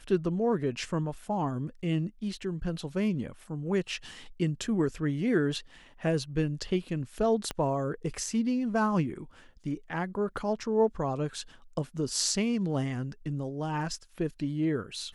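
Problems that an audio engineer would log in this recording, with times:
7.51 s: pop -17 dBFS

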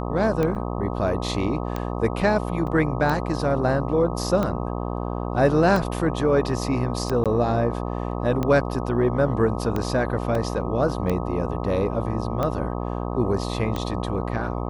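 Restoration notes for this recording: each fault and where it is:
buzz 60 Hz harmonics 21 -28 dBFS
tick 45 rpm -13 dBFS
0.55–0.56 s: dropout 6.6 ms
2.67 s: dropout 2.9 ms
7.24–7.26 s: dropout 17 ms
10.35 s: dropout 2.7 ms

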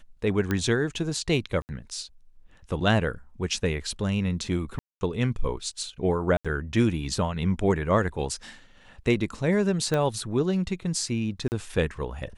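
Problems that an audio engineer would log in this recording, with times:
0.51 s: pop -13 dBFS
1.62–1.69 s: dropout 69 ms
4.79–5.01 s: dropout 220 ms
6.37–6.45 s: dropout 76 ms
9.94 s: pop -14 dBFS
11.48–11.52 s: dropout 39 ms

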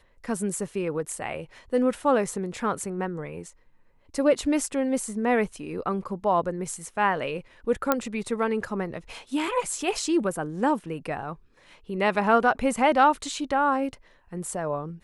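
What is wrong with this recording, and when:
7.92 s: pop -7 dBFS

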